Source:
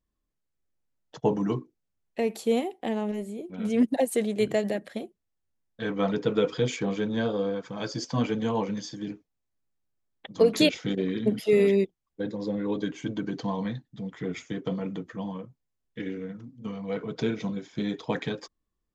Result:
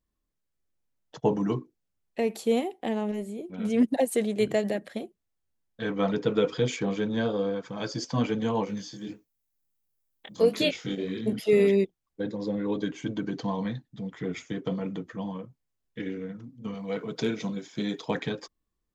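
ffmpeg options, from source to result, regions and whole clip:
-filter_complex "[0:a]asettb=1/sr,asplit=3[s0][s1][s2];[s0]atrim=end=8.654[s3];[s1]atrim=start=8.65:end=11.33,asetpts=PTS-STARTPTS,afade=t=in:d=0.004:c=qsin,afade=t=out:st=2.676:d=0.004:c=qsin,acrossover=split=4300[s4][s5];[s5]acompressor=threshold=0.00316:ratio=4:attack=1:release=60[s6];[s4][s6]amix=inputs=2:normalize=0,aemphasis=mode=production:type=50fm,flanger=delay=18:depth=6.3:speed=1.5[s7];[s2]atrim=start=11.326[s8];[s3][s7]acrossfade=d=0.004:c1=hsin:c2=qsin[s9];[s9][s8]acrossfade=d=0.004:c1=qsin:c2=hsin,asettb=1/sr,asplit=3[s10][s11][s12];[s10]atrim=end=16.744[s13];[s11]atrim=start=16.74:end=18.11,asetpts=PTS-STARTPTS,afade=t=in:d=0.004:c=qsin,afade=t=out:st=1.366:d=0.004:c=qsin,highpass=120,aemphasis=mode=production:type=cd,asoftclip=type=hard:threshold=0.141[s14];[s12]atrim=start=18.106[s15];[s13][s14]acrossfade=d=0.004:c1=hsin:c2=qsin[s16];[s16][s15]acrossfade=d=0.004:c1=qsin:c2=hsin"

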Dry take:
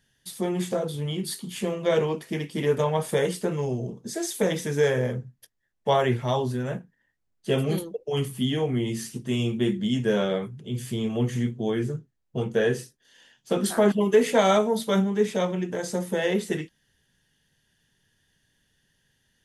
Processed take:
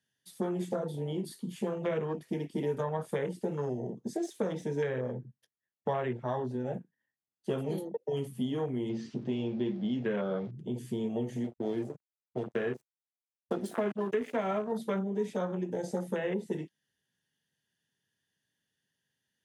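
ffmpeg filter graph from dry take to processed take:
-filter_complex "[0:a]asettb=1/sr,asplit=3[s0][s1][s2];[s0]atrim=end=4.174[s3];[s1]atrim=start=4.17:end=6.74,asetpts=PTS-STARTPTS,afade=t=in:d=0.004:c=qsin,afade=t=out:st=2.566:d=0.004:c=qsin,adynamicsmooth=sensitivity=4.5:basefreq=6800,bandreject=f=4700:w=25[s4];[s2]atrim=start=6.736[s5];[s3][s4]acrossfade=d=0.004:c1=hsin:c2=qsin[s6];[s6][s5]acrossfade=d=0.004:c1=qsin:c2=hsin,asettb=1/sr,asplit=3[s7][s8][s9];[s7]atrim=end=8.894[s10];[s8]atrim=start=8.89:end=10.51,asetpts=PTS-STARTPTS,afade=t=in:d=0.004:c=qsin,afade=t=out:st=1.616:d=0.004:c=qsin,aeval=exprs='val(0)+0.5*0.0126*sgn(val(0))':c=same,lowpass=f=5000:w=0.5412,lowpass=f=5000:w=1.3066[s11];[s9]atrim=start=10.506[s12];[s10][s11]acrossfade=d=0.004:c1=hsin:c2=qsin[s13];[s13][s12]acrossfade=d=0.004:c1=qsin:c2=hsin,asettb=1/sr,asplit=3[s14][s15][s16];[s14]atrim=end=11.444[s17];[s15]atrim=start=11.44:end=14.72,asetpts=PTS-STARTPTS,afade=t=in:d=0.004:c=qsin,afade=t=out:st=3.276:d=0.004:c=qsin,bandreject=f=50:t=h:w=6,bandreject=f=100:t=h:w=6,bandreject=f=150:t=h:w=6,aecho=1:1:2.9:0.31,atrim=end_sample=144648,aeval=exprs='sgn(val(0))*max(abs(val(0))-0.02,0)':c=same[s18];[s16]atrim=start=14.716[s19];[s17][s18]acrossfade=d=0.004:c1=hsin:c2=qsin[s20];[s20][s19]acrossfade=d=0.004:c1=qsin:c2=hsin,afwtdn=0.0251,acrossover=split=250|1300[s21][s22][s23];[s21]acompressor=threshold=0.00891:ratio=4[s24];[s22]acompressor=threshold=0.0141:ratio=4[s25];[s23]acompressor=threshold=0.00398:ratio=4[s26];[s24][s25][s26]amix=inputs=3:normalize=0,highpass=130,volume=1.41"

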